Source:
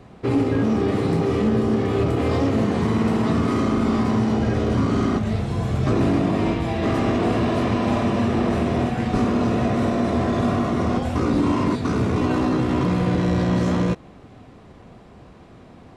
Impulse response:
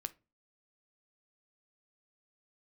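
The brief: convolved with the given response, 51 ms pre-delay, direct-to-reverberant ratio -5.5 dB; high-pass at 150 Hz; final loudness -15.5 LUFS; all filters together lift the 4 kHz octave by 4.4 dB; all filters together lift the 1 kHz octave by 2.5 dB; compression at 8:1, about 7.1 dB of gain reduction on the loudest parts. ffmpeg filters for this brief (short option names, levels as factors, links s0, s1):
-filter_complex "[0:a]highpass=150,equalizer=f=1000:t=o:g=3,equalizer=f=4000:t=o:g=5.5,acompressor=threshold=0.0631:ratio=8,asplit=2[s0][s1];[1:a]atrim=start_sample=2205,adelay=51[s2];[s1][s2]afir=irnorm=-1:irlink=0,volume=2.37[s3];[s0][s3]amix=inputs=2:normalize=0,volume=2"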